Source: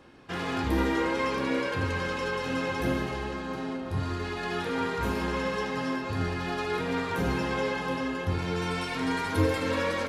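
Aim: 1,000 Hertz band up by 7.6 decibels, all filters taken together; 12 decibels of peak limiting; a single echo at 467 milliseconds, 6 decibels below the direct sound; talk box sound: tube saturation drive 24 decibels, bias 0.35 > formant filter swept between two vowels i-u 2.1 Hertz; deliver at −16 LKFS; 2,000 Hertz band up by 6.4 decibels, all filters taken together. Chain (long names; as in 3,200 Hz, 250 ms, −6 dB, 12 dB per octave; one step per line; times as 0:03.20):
parametric band 1,000 Hz +7.5 dB
parametric band 2,000 Hz +5.5 dB
brickwall limiter −22 dBFS
single-tap delay 467 ms −6 dB
tube saturation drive 24 dB, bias 0.35
formant filter swept between two vowels i-u 2.1 Hz
level +27 dB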